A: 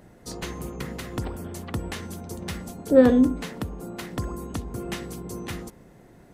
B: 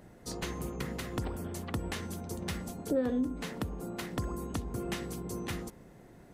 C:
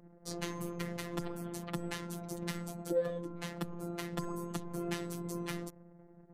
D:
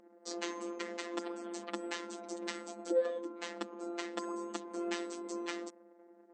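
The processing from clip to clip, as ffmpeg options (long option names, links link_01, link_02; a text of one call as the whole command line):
ffmpeg -i in.wav -af "acompressor=threshold=-26dB:ratio=4,volume=-3dB" out.wav
ffmpeg -i in.wav -af "afftfilt=real='hypot(re,im)*cos(PI*b)':imag='0':win_size=1024:overlap=0.75,anlmdn=0.000398,volume=1dB" out.wav
ffmpeg -i in.wav -af "afftfilt=real='re*between(b*sr/4096,200,8300)':imag='im*between(b*sr/4096,200,8300)':win_size=4096:overlap=0.75,volume=1.5dB" out.wav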